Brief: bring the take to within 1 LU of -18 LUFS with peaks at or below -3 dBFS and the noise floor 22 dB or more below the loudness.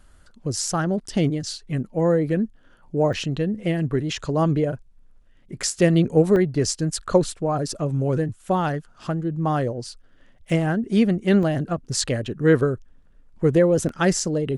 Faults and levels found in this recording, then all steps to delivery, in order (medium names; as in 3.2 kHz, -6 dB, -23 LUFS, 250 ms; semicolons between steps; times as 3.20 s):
dropouts 5; longest dropout 1.4 ms; loudness -22.5 LUFS; peak level -4.5 dBFS; loudness target -18.0 LUFS
-> interpolate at 3.13/6.36/10.50/11.43/13.89 s, 1.4 ms; trim +4.5 dB; peak limiter -3 dBFS